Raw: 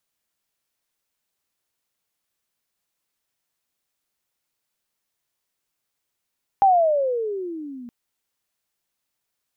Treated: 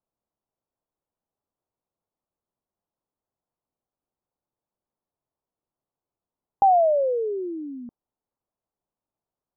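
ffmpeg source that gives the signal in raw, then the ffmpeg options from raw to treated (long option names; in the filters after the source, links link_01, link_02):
-f lavfi -i "aevalsrc='pow(10,(-11-24*t/1.27)/20)*sin(2*PI*808*1.27/(-21.5*log(2)/12)*(exp(-21.5*log(2)/12*t/1.27)-1))':duration=1.27:sample_rate=44100"
-af "lowpass=frequency=1000:width=0.5412,lowpass=frequency=1000:width=1.3066"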